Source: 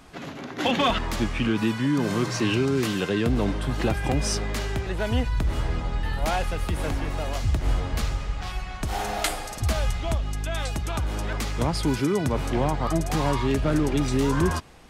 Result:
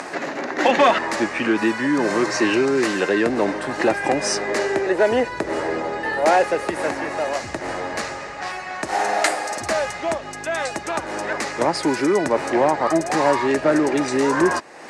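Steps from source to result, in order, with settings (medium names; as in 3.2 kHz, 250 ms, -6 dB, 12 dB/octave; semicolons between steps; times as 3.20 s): 4.47–6.70 s: peaking EQ 420 Hz +7.5 dB 1 oct; upward compressor, threshold -27 dBFS; cabinet simulation 320–9400 Hz, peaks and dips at 340 Hz +5 dB, 580 Hz +6 dB, 860 Hz +4 dB, 1.8 kHz +8 dB, 3.3 kHz -9 dB; trim +5.5 dB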